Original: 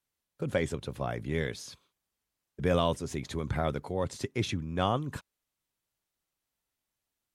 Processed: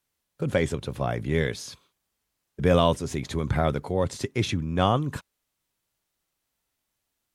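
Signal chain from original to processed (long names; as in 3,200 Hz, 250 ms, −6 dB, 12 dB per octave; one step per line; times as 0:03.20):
harmonic and percussive parts rebalanced percussive −3 dB
level +7.5 dB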